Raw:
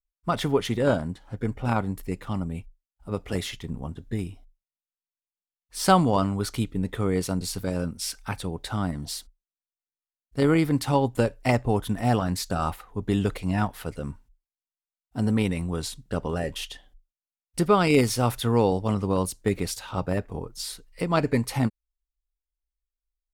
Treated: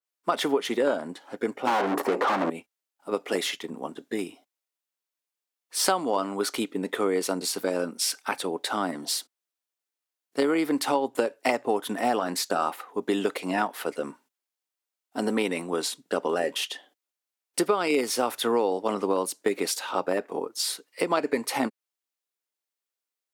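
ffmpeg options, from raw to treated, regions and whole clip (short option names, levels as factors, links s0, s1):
-filter_complex "[0:a]asettb=1/sr,asplit=3[s0][s1][s2];[s0]atrim=end=1.674[s3];[s1]atrim=start=1.67:end=2.5,asetpts=PTS-STARTPTS,afade=t=in:d=0.004:c=qsin,afade=t=out:st=0.826:d=0.004:c=qsin,highshelf=f=1500:t=q:w=1.5:g=-14,asoftclip=type=hard:threshold=0.0596,asplit=2[s4][s5];[s5]highpass=f=720:p=1,volume=100,asoftclip=type=tanh:threshold=0.141[s6];[s4][s6]amix=inputs=2:normalize=0,lowpass=f=2000:p=1,volume=0.501[s7];[s2]atrim=start=2.496[s8];[s3][s7]acrossfade=d=0.004:c1=hsin:c2=qsin[s9];[s9][s8]acrossfade=d=0.004:c1=qsin:c2=hsin,highpass=f=290:w=0.5412,highpass=f=290:w=1.3066,acompressor=threshold=0.0447:ratio=6,adynamicequalizer=threshold=0.00398:dfrequency=2700:dqfactor=0.7:tfrequency=2700:tqfactor=0.7:attack=5:release=100:ratio=0.375:range=1.5:mode=cutabove:tftype=highshelf,volume=2.11"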